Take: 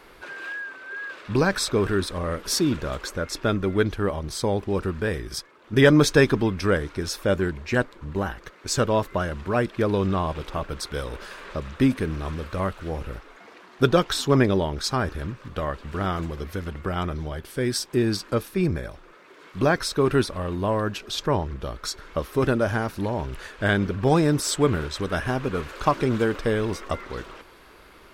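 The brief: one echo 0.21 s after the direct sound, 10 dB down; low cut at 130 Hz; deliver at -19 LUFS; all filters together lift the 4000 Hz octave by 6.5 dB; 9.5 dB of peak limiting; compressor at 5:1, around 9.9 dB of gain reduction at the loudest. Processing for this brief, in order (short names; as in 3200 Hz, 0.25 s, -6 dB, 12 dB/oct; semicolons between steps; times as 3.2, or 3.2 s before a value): HPF 130 Hz; bell 4000 Hz +8 dB; compressor 5:1, threshold -22 dBFS; limiter -18 dBFS; echo 0.21 s -10 dB; gain +11 dB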